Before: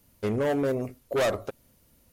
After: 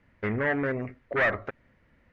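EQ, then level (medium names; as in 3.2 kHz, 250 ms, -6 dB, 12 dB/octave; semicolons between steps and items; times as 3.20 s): dynamic bell 490 Hz, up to -5 dB, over -36 dBFS, Q 0.96; resonant low-pass 1.9 kHz, resonance Q 4.3; 0.0 dB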